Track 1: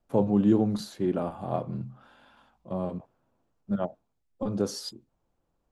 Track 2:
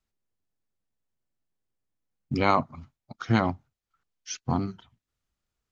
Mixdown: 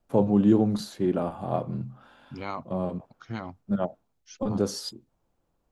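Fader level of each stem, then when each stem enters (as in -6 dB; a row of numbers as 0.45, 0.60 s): +2.0, -12.5 dB; 0.00, 0.00 s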